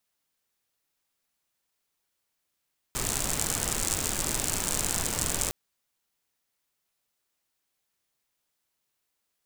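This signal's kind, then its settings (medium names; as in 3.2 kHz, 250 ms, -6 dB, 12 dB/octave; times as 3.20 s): rain from filtered ticks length 2.56 s, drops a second 85, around 7.7 kHz, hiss -0.5 dB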